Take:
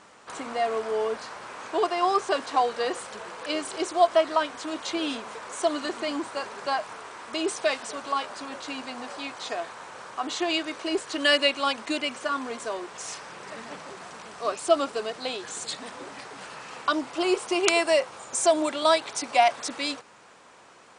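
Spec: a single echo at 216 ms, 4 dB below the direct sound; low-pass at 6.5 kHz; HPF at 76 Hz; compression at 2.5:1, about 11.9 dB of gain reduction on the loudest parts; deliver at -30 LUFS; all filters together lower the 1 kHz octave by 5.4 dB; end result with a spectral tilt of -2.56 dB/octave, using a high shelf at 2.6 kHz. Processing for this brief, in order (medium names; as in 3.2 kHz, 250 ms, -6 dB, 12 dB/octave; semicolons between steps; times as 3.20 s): high-pass 76 Hz; low-pass 6.5 kHz; peaking EQ 1 kHz -7.5 dB; treble shelf 2.6 kHz -5.5 dB; compression 2.5:1, threshold -37 dBFS; delay 216 ms -4 dB; trim +7.5 dB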